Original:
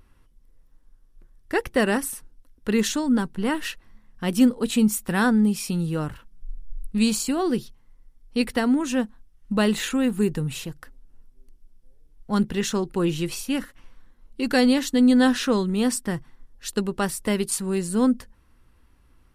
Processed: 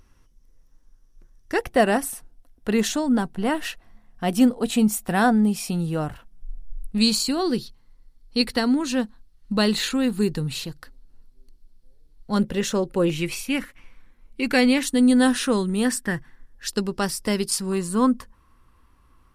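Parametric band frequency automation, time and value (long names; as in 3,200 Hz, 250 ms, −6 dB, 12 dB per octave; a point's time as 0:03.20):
parametric band +12 dB 0.33 octaves
5,900 Hz
from 0:01.59 700 Hz
from 0:07.01 4,300 Hz
from 0:12.36 550 Hz
from 0:13.10 2,300 Hz
from 0:14.83 9,400 Hz
from 0:15.85 1,700 Hz
from 0:16.67 5,100 Hz
from 0:17.72 1,100 Hz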